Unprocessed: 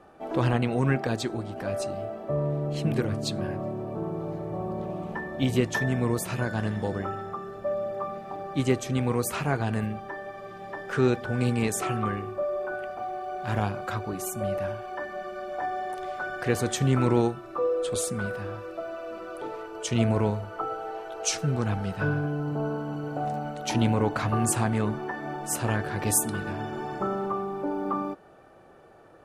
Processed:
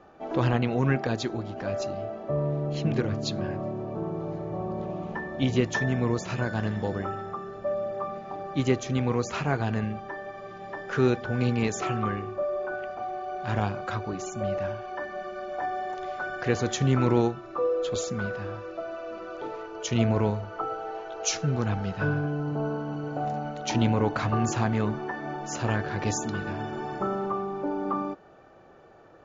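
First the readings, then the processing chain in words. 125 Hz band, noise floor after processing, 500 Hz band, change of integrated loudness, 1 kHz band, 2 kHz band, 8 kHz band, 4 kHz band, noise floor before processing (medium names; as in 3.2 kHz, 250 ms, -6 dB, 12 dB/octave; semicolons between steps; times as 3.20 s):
0.0 dB, -43 dBFS, 0.0 dB, -0.5 dB, 0.0 dB, 0.0 dB, -4.5 dB, 0.0 dB, -43 dBFS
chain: brick-wall FIR low-pass 7.3 kHz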